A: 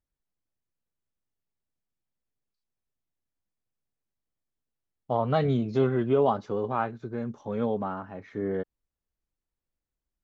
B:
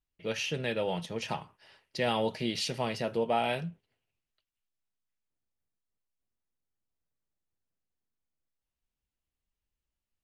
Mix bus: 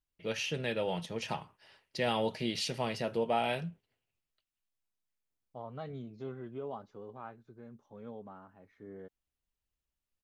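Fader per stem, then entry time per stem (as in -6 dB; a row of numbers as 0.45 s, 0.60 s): -18.0 dB, -2.0 dB; 0.45 s, 0.00 s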